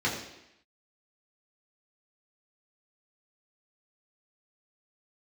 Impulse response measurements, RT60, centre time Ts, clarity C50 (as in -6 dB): 0.85 s, 38 ms, 5.5 dB